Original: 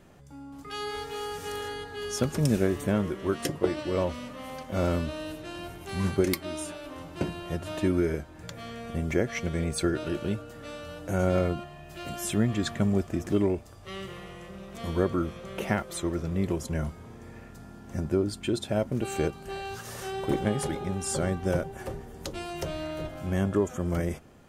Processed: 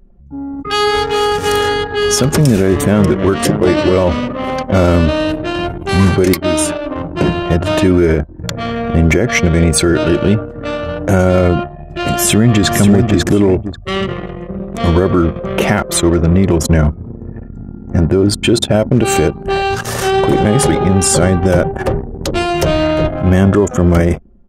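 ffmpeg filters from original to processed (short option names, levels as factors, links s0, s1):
-filter_complex "[0:a]asplit=2[s0][s1];[s1]afade=t=in:st=2.39:d=0.01,afade=t=out:st=3.37:d=0.01,aecho=0:1:590|1180|1770:0.177828|0.0622398|0.0217839[s2];[s0][s2]amix=inputs=2:normalize=0,asplit=2[s3][s4];[s4]afade=t=in:st=12.09:d=0.01,afade=t=out:st=12.69:d=0.01,aecho=0:1:540|1080|1620|2160:0.530884|0.159265|0.0477796|0.0143339[s5];[s3][s5]amix=inputs=2:normalize=0,anlmdn=0.398,alimiter=level_in=13.3:limit=0.891:release=50:level=0:latency=1,volume=0.891"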